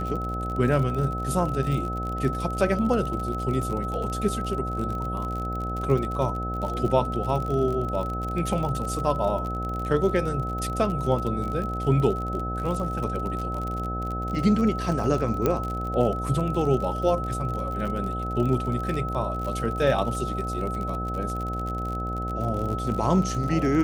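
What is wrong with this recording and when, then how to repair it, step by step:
mains buzz 60 Hz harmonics 13 −31 dBFS
surface crackle 49 per second −30 dBFS
whistle 1,300 Hz −31 dBFS
0:15.46: click −10 dBFS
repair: click removal
hum removal 60 Hz, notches 13
notch filter 1,300 Hz, Q 30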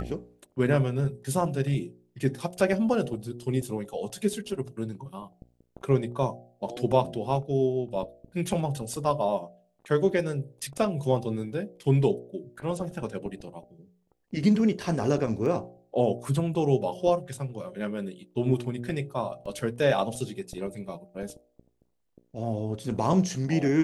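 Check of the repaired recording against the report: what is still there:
0:15.46: click

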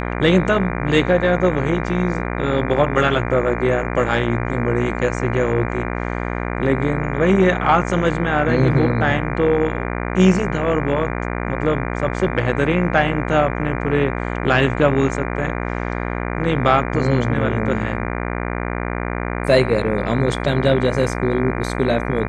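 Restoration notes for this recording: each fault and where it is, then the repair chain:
mains buzz 60 Hz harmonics 40 −24 dBFS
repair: hum removal 60 Hz, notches 40

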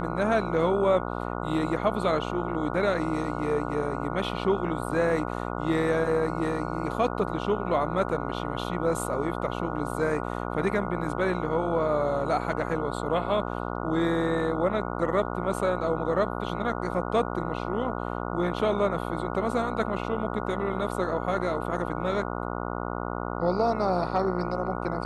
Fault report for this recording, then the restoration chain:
mains buzz 60 Hz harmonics 24 −32 dBFS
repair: hum removal 60 Hz, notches 24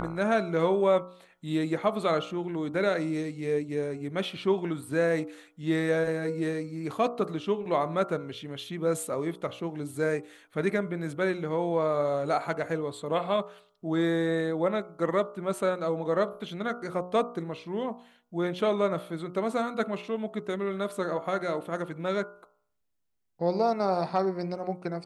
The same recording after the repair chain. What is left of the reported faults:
none of them is left

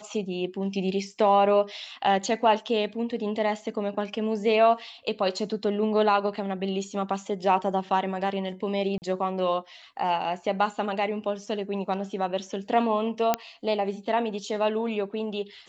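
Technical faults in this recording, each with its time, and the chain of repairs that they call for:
0:08.98–0:09.02: drop-out 39 ms
0:13.34: click −8 dBFS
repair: click removal
repair the gap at 0:08.98, 39 ms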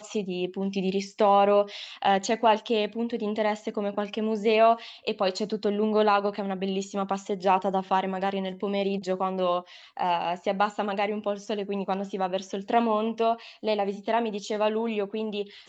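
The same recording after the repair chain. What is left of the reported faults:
none of them is left

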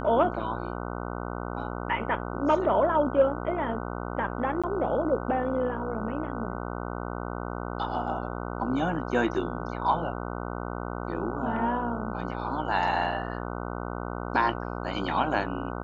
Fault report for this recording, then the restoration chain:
mains buzz 60 Hz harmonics 25 −34 dBFS
0:04.62–0:04.64: drop-out 16 ms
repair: hum removal 60 Hz, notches 25
repair the gap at 0:04.62, 16 ms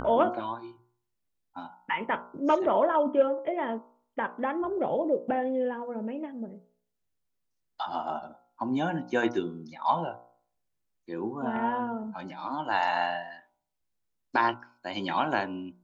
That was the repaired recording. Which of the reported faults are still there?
none of them is left

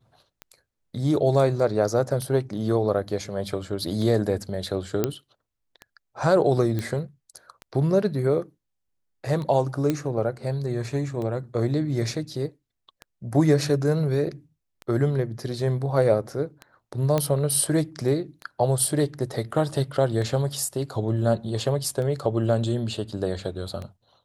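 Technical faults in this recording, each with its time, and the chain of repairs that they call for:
scratch tick 33 1/3 rpm −22 dBFS
0:05.04: click −8 dBFS
0:06.79: click −16 dBFS
0:09.90: click −11 dBFS
0:17.18: click −10 dBFS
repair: click removal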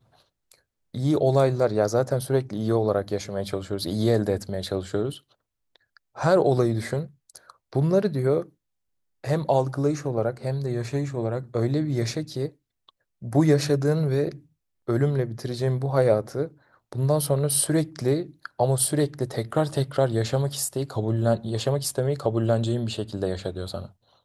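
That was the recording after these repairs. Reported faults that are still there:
none of them is left

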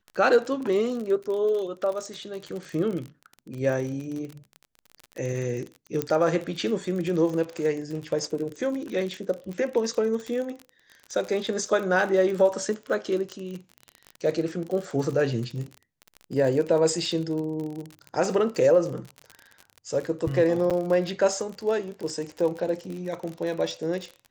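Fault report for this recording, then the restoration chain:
surface crackle 41 per second −31 dBFS
0:06.02: click −11 dBFS
0:20.70–0:20.71: drop-out 6.8 ms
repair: click removal
repair the gap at 0:20.70, 6.8 ms

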